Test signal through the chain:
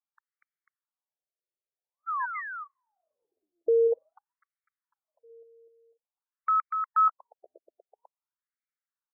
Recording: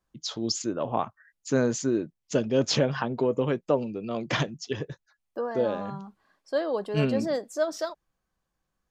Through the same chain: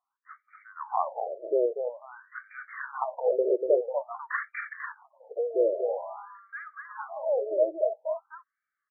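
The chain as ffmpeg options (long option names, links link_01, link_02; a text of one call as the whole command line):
ffmpeg -i in.wav -af "aecho=1:1:241|494:0.531|0.422,afftfilt=real='re*between(b*sr/1024,460*pow(1700/460,0.5+0.5*sin(2*PI*0.49*pts/sr))/1.41,460*pow(1700/460,0.5+0.5*sin(2*PI*0.49*pts/sr))*1.41)':imag='im*between(b*sr/1024,460*pow(1700/460,0.5+0.5*sin(2*PI*0.49*pts/sr))/1.41,460*pow(1700/460,0.5+0.5*sin(2*PI*0.49*pts/sr))*1.41)':win_size=1024:overlap=0.75,volume=2dB" out.wav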